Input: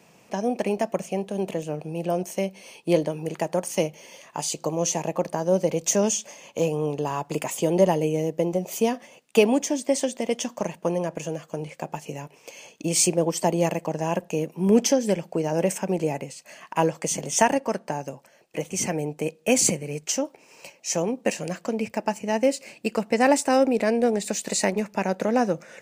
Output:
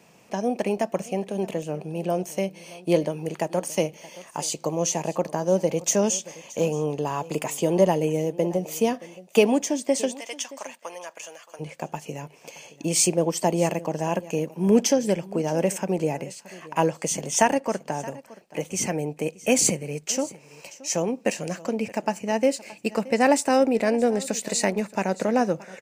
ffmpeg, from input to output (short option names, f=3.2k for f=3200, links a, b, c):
-filter_complex "[0:a]asplit=3[a][b][c];[a]afade=t=out:st=10.15:d=0.02[d];[b]highpass=1.1k,afade=t=in:st=10.15:d=0.02,afade=t=out:st=11.59:d=0.02[e];[c]afade=t=in:st=11.59:d=0.02[f];[d][e][f]amix=inputs=3:normalize=0,aecho=1:1:623:0.106"